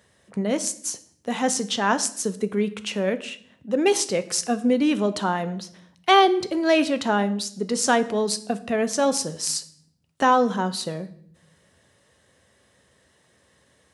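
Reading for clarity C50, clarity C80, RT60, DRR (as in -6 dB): 16.5 dB, 19.0 dB, 0.60 s, 11.5 dB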